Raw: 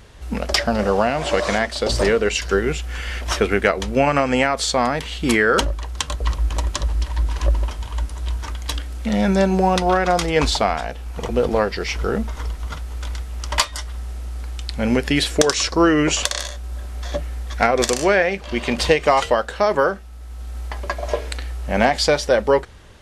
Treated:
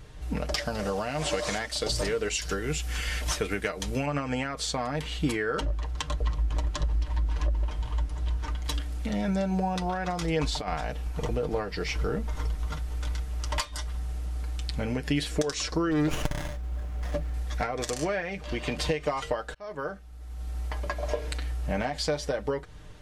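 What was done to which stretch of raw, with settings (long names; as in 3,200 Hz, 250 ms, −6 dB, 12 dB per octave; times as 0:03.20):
0:00.58–0:04.06: high-shelf EQ 3,500 Hz +11.5 dB
0:05.57–0:08.65: high-shelf EQ 7,100 Hz −11 dB
0:10.57–0:11.08: compressor whose output falls as the input rises −21 dBFS, ratio −0.5
0:15.91–0:17.34: windowed peak hold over 9 samples
0:19.54–0:20.48: fade in
whole clip: downward compressor, threshold −21 dBFS; low-shelf EQ 210 Hz +8 dB; comb filter 6.6 ms, depth 55%; level −7 dB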